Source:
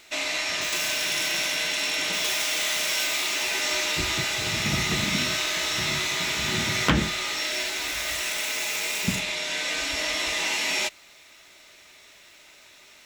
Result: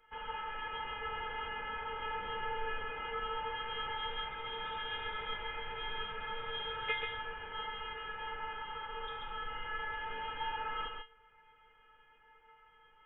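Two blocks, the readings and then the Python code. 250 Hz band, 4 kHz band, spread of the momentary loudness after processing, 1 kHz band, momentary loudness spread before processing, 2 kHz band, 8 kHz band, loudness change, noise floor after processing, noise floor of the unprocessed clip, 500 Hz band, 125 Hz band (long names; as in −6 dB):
−25.5 dB, −17.5 dB, 4 LU, −3.5 dB, 3 LU, −14.5 dB, below −40 dB, −15.0 dB, −64 dBFS, −52 dBFS, −10.0 dB, −21.5 dB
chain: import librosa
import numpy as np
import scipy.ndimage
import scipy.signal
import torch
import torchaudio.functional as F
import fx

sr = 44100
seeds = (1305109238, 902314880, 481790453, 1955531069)

y = scipy.signal.sosfilt(scipy.signal.butter(2, 140.0, 'highpass', fs=sr, output='sos'), x)
y = fx.tilt_shelf(y, sr, db=-3.5, hz=1100.0)
y = 10.0 ** (-4.0 / 20.0) * np.tanh(y / 10.0 ** (-4.0 / 20.0))
y = fx.stiff_resonator(y, sr, f0_hz=370.0, decay_s=0.26, stiffness=0.002)
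y = y + 10.0 ** (-4.0 / 20.0) * np.pad(y, (int(134 * sr / 1000.0), 0))[:len(y)]
y = fx.freq_invert(y, sr, carrier_hz=3600)
y = y * 10.0 ** (1.0 / 20.0)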